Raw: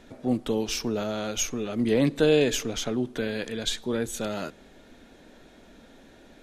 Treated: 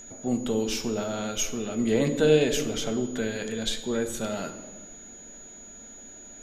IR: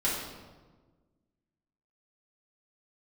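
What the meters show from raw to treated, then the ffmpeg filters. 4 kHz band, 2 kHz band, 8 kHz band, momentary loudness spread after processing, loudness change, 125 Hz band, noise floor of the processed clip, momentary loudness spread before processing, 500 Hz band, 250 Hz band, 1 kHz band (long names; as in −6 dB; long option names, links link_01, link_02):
−1.0 dB, −0.5 dB, +1.0 dB, 21 LU, 0.0 dB, 0.0 dB, −46 dBFS, 9 LU, +0.5 dB, −0.5 dB, −0.5 dB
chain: -filter_complex "[0:a]aeval=exprs='val(0)+0.01*sin(2*PI*6800*n/s)':channel_layout=same,asplit=2[link_01][link_02];[1:a]atrim=start_sample=2205[link_03];[link_02][link_03]afir=irnorm=-1:irlink=0,volume=-13.5dB[link_04];[link_01][link_04]amix=inputs=2:normalize=0,volume=-3dB"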